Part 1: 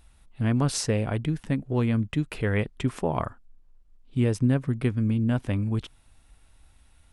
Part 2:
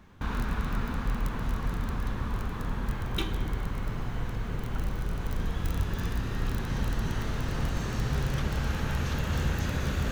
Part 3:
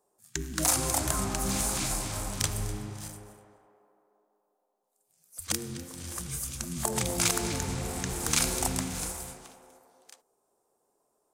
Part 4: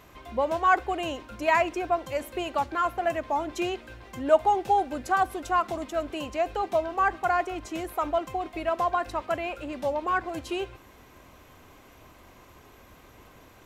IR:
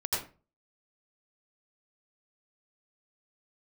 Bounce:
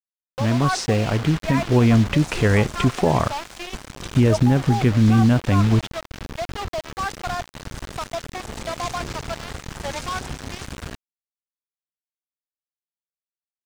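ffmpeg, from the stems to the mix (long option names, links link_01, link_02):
-filter_complex "[0:a]dynaudnorm=framelen=160:gausssize=17:maxgain=8.5dB,volume=3dB[link_01];[1:a]adelay=850,volume=-3dB,asplit=3[link_02][link_03][link_04];[link_02]atrim=end=2.91,asetpts=PTS-STARTPTS,afade=type=out:start_time=2.906:duration=0.004:curve=hsin[link_05];[link_03]atrim=start=2.91:end=3.72,asetpts=PTS-STARTPTS,volume=0[link_06];[link_04]atrim=start=3.72,asetpts=PTS-STARTPTS,afade=type=in:duration=0.004:curve=hsin[link_07];[link_05][link_06][link_07]concat=n=3:v=0:a=1[link_08];[2:a]bandreject=frequency=60:width_type=h:width=6,bandreject=frequency=120:width_type=h:width=6,bandreject=frequency=180:width_type=h:width=6,bandreject=frequency=240:width_type=h:width=6,bandreject=frequency=300:width_type=h:width=6,bandreject=frequency=360:width_type=h:width=6,bandreject=frequency=420:width_type=h:width=6,aeval=exprs='val(0)+0.000891*(sin(2*PI*50*n/s)+sin(2*PI*2*50*n/s)/2+sin(2*PI*3*50*n/s)/3+sin(2*PI*4*50*n/s)/4+sin(2*PI*5*50*n/s)/5)':channel_layout=same,adelay=1600,volume=-3dB[link_09];[3:a]highpass=400,volume=-3.5dB[link_10];[link_01][link_10]amix=inputs=2:normalize=0,acrusher=bits=4:mix=0:aa=0.000001,alimiter=limit=-8dB:level=0:latency=1:release=34,volume=0dB[link_11];[link_08][link_09]amix=inputs=2:normalize=0,aeval=exprs='val(0)*gte(abs(val(0)),0.0447)':channel_layout=same,alimiter=limit=-19.5dB:level=0:latency=1:release=21,volume=0dB[link_12];[link_11][link_12]amix=inputs=2:normalize=0,acrossover=split=7100[link_13][link_14];[link_14]acompressor=threshold=-51dB:ratio=4:attack=1:release=60[link_15];[link_13][link_15]amix=inputs=2:normalize=0"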